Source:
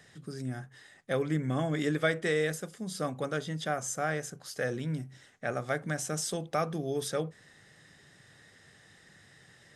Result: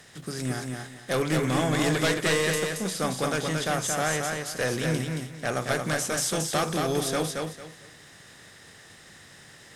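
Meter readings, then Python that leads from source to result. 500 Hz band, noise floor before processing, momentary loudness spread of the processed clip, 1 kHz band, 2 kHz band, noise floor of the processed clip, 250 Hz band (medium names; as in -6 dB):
+4.5 dB, -59 dBFS, 9 LU, +6.5 dB, +6.5 dB, -51 dBFS, +5.5 dB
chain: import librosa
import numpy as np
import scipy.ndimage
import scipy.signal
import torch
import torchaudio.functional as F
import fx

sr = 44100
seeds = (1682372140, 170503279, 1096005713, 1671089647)

y = fx.spec_flatten(x, sr, power=0.69)
y = fx.fold_sine(y, sr, drive_db=9, ceiling_db=-13.0)
y = fx.echo_feedback(y, sr, ms=225, feedback_pct=25, wet_db=-4)
y = y * librosa.db_to_amplitude(-6.5)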